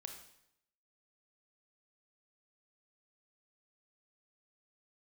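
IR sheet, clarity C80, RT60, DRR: 9.5 dB, 0.75 s, 4.0 dB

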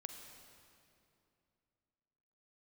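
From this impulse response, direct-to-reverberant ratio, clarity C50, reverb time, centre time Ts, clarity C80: 5.0 dB, 5.5 dB, 2.7 s, 54 ms, 6.0 dB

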